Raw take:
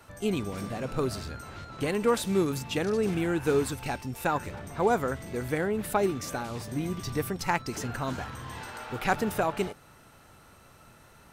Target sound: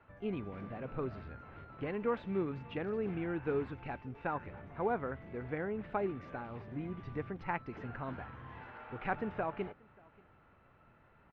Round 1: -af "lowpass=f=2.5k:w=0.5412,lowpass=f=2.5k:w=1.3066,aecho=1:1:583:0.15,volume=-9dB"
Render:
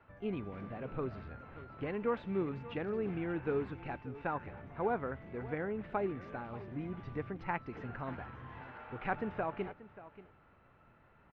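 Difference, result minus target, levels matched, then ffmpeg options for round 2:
echo-to-direct +10 dB
-af "lowpass=f=2.5k:w=0.5412,lowpass=f=2.5k:w=1.3066,aecho=1:1:583:0.0473,volume=-9dB"

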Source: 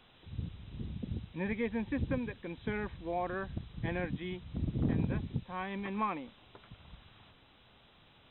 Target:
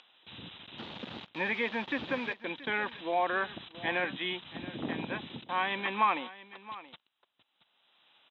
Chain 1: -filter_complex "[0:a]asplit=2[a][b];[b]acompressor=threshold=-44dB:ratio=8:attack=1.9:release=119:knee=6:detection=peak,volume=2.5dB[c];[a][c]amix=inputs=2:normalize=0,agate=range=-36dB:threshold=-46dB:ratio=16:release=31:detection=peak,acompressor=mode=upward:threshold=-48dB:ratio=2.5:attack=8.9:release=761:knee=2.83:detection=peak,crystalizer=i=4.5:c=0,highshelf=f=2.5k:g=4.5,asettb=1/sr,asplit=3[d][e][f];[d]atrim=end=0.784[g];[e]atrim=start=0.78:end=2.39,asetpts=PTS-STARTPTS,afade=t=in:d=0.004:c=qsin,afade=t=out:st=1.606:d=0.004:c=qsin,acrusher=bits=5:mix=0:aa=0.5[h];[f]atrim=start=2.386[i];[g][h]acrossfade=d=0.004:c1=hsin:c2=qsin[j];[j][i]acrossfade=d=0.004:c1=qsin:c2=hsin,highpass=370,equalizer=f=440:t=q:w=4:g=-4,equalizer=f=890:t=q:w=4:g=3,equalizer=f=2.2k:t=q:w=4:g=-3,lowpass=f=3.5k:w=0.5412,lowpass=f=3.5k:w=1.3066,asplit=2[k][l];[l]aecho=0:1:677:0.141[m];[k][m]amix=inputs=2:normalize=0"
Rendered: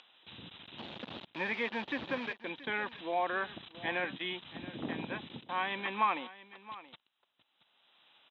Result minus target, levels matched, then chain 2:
compressor: peak gain reduction +10 dB
-filter_complex "[0:a]asplit=2[a][b];[b]acompressor=threshold=-32.5dB:ratio=8:attack=1.9:release=119:knee=6:detection=peak,volume=2.5dB[c];[a][c]amix=inputs=2:normalize=0,agate=range=-36dB:threshold=-46dB:ratio=16:release=31:detection=peak,acompressor=mode=upward:threshold=-48dB:ratio=2.5:attack=8.9:release=761:knee=2.83:detection=peak,crystalizer=i=4.5:c=0,highshelf=f=2.5k:g=4.5,asettb=1/sr,asplit=3[d][e][f];[d]atrim=end=0.784[g];[e]atrim=start=0.78:end=2.39,asetpts=PTS-STARTPTS,afade=t=in:d=0.004:c=qsin,afade=t=out:st=1.606:d=0.004:c=qsin,acrusher=bits=5:mix=0:aa=0.5[h];[f]atrim=start=2.386[i];[g][h]acrossfade=d=0.004:c1=hsin:c2=qsin[j];[j][i]acrossfade=d=0.004:c1=qsin:c2=hsin,highpass=370,equalizer=f=440:t=q:w=4:g=-4,equalizer=f=890:t=q:w=4:g=3,equalizer=f=2.2k:t=q:w=4:g=-3,lowpass=f=3.5k:w=0.5412,lowpass=f=3.5k:w=1.3066,asplit=2[k][l];[l]aecho=0:1:677:0.141[m];[k][m]amix=inputs=2:normalize=0"

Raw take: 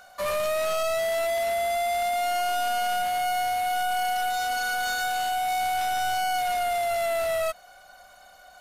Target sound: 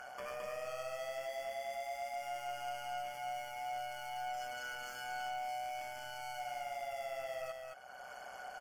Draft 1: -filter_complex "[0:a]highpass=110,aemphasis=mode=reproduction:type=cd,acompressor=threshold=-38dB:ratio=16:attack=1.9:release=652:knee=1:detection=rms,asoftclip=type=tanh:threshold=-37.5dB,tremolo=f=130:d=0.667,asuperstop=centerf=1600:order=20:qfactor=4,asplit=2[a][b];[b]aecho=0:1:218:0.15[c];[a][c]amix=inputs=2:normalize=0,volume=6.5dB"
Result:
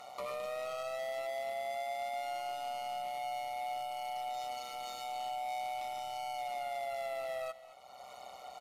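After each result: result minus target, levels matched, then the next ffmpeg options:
echo-to-direct -12 dB; soft clip: distortion -10 dB; 2000 Hz band -5.0 dB
-filter_complex "[0:a]highpass=110,aemphasis=mode=reproduction:type=cd,acompressor=threshold=-38dB:ratio=16:attack=1.9:release=652:knee=1:detection=rms,asoftclip=type=tanh:threshold=-37.5dB,tremolo=f=130:d=0.667,asuperstop=centerf=1600:order=20:qfactor=4,asplit=2[a][b];[b]aecho=0:1:218:0.596[c];[a][c]amix=inputs=2:normalize=0,volume=6.5dB"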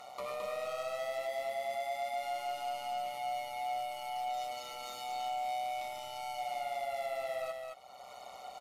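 soft clip: distortion -10 dB; 2000 Hz band -5.0 dB
-filter_complex "[0:a]highpass=110,aemphasis=mode=reproduction:type=cd,acompressor=threshold=-38dB:ratio=16:attack=1.9:release=652:knee=1:detection=rms,asoftclip=type=tanh:threshold=-45.5dB,tremolo=f=130:d=0.667,asuperstop=centerf=1600:order=20:qfactor=4,asplit=2[a][b];[b]aecho=0:1:218:0.596[c];[a][c]amix=inputs=2:normalize=0,volume=6.5dB"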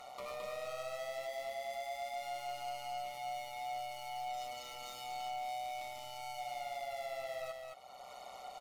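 2000 Hz band -3.5 dB
-filter_complex "[0:a]highpass=110,aemphasis=mode=reproduction:type=cd,acompressor=threshold=-38dB:ratio=16:attack=1.9:release=652:knee=1:detection=rms,asoftclip=type=tanh:threshold=-45.5dB,tremolo=f=130:d=0.667,asuperstop=centerf=3900:order=20:qfactor=4,asplit=2[a][b];[b]aecho=0:1:218:0.596[c];[a][c]amix=inputs=2:normalize=0,volume=6.5dB"

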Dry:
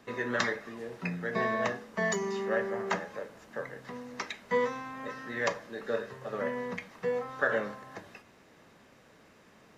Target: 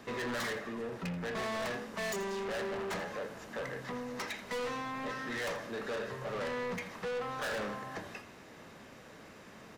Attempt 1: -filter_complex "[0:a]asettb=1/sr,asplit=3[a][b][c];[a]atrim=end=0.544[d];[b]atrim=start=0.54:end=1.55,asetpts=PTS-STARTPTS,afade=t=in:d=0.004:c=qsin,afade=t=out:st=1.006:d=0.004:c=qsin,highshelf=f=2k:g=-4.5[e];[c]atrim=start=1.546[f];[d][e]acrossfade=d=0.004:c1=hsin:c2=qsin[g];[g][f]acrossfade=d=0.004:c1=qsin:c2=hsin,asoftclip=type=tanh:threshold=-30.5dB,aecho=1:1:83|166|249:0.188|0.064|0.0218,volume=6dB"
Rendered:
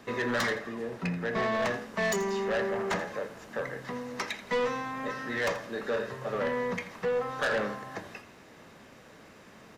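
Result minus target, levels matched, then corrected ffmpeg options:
soft clip: distortion -6 dB
-filter_complex "[0:a]asettb=1/sr,asplit=3[a][b][c];[a]atrim=end=0.544[d];[b]atrim=start=0.54:end=1.55,asetpts=PTS-STARTPTS,afade=t=in:d=0.004:c=qsin,afade=t=out:st=1.006:d=0.004:c=qsin,highshelf=f=2k:g=-4.5[e];[c]atrim=start=1.546[f];[d][e]acrossfade=d=0.004:c1=hsin:c2=qsin[g];[g][f]acrossfade=d=0.004:c1=qsin:c2=hsin,asoftclip=type=tanh:threshold=-40.5dB,aecho=1:1:83|166|249:0.188|0.064|0.0218,volume=6dB"

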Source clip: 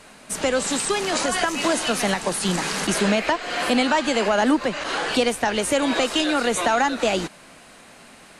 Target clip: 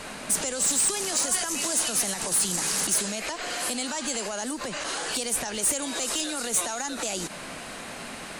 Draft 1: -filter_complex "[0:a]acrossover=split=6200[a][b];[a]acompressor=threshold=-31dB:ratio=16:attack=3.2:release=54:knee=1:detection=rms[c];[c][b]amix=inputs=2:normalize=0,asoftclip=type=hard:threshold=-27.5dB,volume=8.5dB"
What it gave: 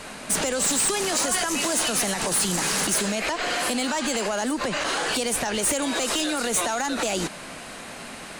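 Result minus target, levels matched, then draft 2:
compressor: peak gain reduction -7 dB
-filter_complex "[0:a]acrossover=split=6200[a][b];[a]acompressor=threshold=-38.5dB:ratio=16:attack=3.2:release=54:knee=1:detection=rms[c];[c][b]amix=inputs=2:normalize=0,asoftclip=type=hard:threshold=-27.5dB,volume=8.5dB"

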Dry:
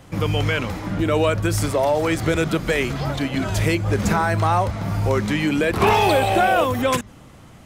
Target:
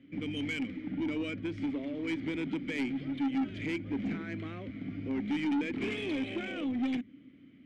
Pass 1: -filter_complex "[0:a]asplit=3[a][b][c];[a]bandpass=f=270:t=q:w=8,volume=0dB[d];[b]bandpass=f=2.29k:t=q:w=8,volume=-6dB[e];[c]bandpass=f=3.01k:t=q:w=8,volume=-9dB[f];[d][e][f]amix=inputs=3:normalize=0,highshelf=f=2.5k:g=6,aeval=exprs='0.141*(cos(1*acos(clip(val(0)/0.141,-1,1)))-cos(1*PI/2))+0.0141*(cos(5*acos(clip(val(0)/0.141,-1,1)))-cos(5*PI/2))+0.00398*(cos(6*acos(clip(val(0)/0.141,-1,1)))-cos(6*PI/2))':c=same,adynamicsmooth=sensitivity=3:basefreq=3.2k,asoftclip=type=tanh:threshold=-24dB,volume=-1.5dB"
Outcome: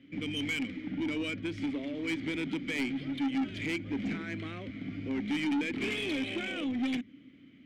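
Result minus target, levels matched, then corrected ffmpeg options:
4000 Hz band +4.5 dB
-filter_complex "[0:a]asplit=3[a][b][c];[a]bandpass=f=270:t=q:w=8,volume=0dB[d];[b]bandpass=f=2.29k:t=q:w=8,volume=-6dB[e];[c]bandpass=f=3.01k:t=q:w=8,volume=-9dB[f];[d][e][f]amix=inputs=3:normalize=0,highshelf=f=2.5k:g=-3,aeval=exprs='0.141*(cos(1*acos(clip(val(0)/0.141,-1,1)))-cos(1*PI/2))+0.0141*(cos(5*acos(clip(val(0)/0.141,-1,1)))-cos(5*PI/2))+0.00398*(cos(6*acos(clip(val(0)/0.141,-1,1)))-cos(6*PI/2))':c=same,adynamicsmooth=sensitivity=3:basefreq=3.2k,asoftclip=type=tanh:threshold=-24dB,volume=-1.5dB"

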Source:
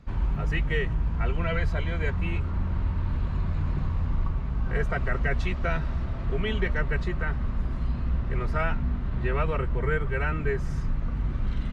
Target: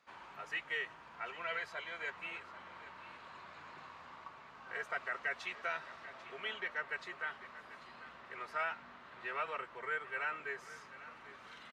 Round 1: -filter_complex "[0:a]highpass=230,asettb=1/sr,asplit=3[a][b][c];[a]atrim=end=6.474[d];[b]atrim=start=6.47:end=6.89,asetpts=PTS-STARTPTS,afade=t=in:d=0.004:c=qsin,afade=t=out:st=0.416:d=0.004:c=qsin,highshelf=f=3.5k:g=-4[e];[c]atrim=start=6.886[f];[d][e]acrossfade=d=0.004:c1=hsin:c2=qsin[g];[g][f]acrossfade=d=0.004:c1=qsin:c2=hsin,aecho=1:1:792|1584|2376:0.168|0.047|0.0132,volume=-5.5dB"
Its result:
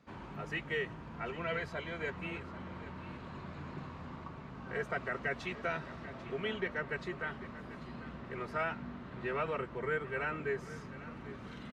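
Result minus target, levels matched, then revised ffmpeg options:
250 Hz band +15.5 dB
-filter_complex "[0:a]highpass=840,asettb=1/sr,asplit=3[a][b][c];[a]atrim=end=6.474[d];[b]atrim=start=6.47:end=6.89,asetpts=PTS-STARTPTS,afade=t=in:d=0.004:c=qsin,afade=t=out:st=0.416:d=0.004:c=qsin,highshelf=f=3.5k:g=-4[e];[c]atrim=start=6.886[f];[d][e]acrossfade=d=0.004:c1=hsin:c2=qsin[g];[g][f]acrossfade=d=0.004:c1=qsin:c2=hsin,aecho=1:1:792|1584|2376:0.168|0.047|0.0132,volume=-5.5dB"

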